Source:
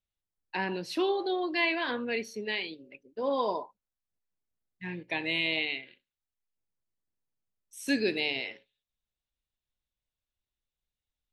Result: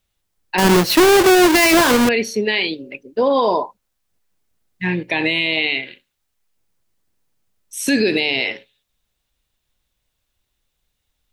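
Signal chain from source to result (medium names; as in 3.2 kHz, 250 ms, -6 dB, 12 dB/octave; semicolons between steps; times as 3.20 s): 0.58–2.09 s: square wave that keeps the level; loudness maximiser +24 dB; trim -6.5 dB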